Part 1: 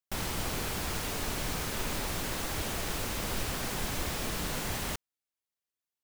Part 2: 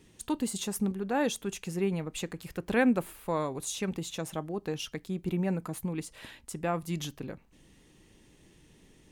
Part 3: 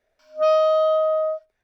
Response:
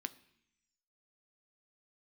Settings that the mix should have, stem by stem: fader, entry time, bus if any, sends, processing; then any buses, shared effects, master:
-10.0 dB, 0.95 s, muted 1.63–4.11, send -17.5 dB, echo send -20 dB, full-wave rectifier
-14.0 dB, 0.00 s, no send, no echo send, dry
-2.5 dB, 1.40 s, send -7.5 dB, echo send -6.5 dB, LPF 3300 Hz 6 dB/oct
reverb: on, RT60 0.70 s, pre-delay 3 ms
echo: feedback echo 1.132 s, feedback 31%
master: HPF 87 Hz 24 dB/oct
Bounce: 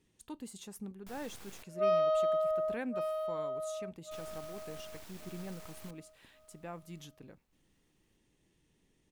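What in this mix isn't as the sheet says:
stem 1 -10.0 dB -> -17.0 dB; stem 3 -2.5 dB -> -11.5 dB; master: missing HPF 87 Hz 24 dB/oct

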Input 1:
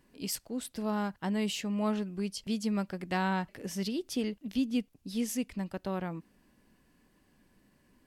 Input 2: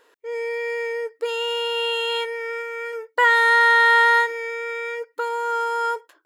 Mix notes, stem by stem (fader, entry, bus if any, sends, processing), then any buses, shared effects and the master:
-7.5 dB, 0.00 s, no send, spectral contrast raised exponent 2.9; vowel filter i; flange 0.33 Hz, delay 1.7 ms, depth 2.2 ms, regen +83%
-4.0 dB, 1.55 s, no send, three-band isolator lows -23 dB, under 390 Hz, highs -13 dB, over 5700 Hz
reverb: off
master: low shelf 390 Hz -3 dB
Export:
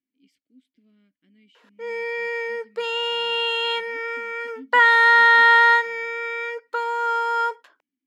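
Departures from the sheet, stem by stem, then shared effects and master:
stem 1: missing spectral contrast raised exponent 2.9; stem 2 -4.0 dB -> +2.0 dB

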